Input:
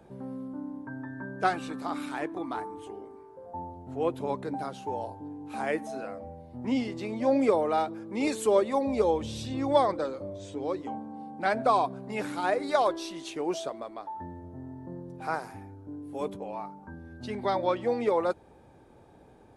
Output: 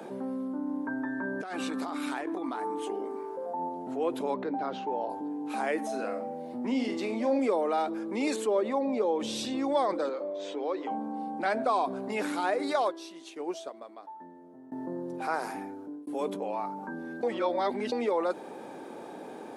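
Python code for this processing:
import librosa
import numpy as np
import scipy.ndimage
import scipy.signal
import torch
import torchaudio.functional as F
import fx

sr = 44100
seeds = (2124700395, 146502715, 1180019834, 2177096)

y = fx.over_compress(x, sr, threshold_db=-38.0, ratio=-1.0, at=(0.58, 3.69))
y = fx.air_absorb(y, sr, metres=220.0, at=(4.34, 5.1))
y = fx.room_flutter(y, sr, wall_m=7.7, rt60_s=0.3, at=(5.86, 7.39))
y = fx.lowpass(y, sr, hz=2300.0, slope=6, at=(8.36, 9.2))
y = fx.bandpass_edges(y, sr, low_hz=390.0, high_hz=3900.0, at=(10.09, 10.91))
y = fx.upward_expand(y, sr, threshold_db=-41.0, expansion=2.5, at=(12.85, 14.72))
y = fx.edit(y, sr, fx.fade_out_span(start_s=15.59, length_s=0.48),
    fx.reverse_span(start_s=17.23, length_s=0.69), tone=tone)
y = scipy.signal.sosfilt(scipy.signal.butter(4, 220.0, 'highpass', fs=sr, output='sos'), y)
y = fx.env_flatten(y, sr, amount_pct=50)
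y = y * 10.0 ** (-5.5 / 20.0)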